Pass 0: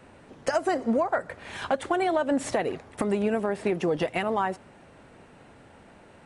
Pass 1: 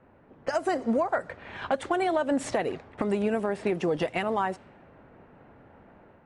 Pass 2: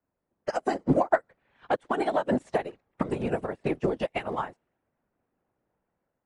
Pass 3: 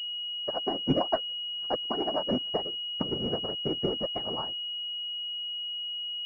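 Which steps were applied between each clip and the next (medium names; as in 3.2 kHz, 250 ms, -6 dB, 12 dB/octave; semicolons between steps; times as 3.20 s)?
level-controlled noise filter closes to 1.5 kHz, open at -22 dBFS; level rider gain up to 5 dB; trim -6 dB
whisper effect; upward expansion 2.5:1, over -41 dBFS; trim +4.5 dB
in parallel at -9 dB: sample-and-hold 25×; on the sum: class-D stage that switches slowly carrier 2.9 kHz; trim -5.5 dB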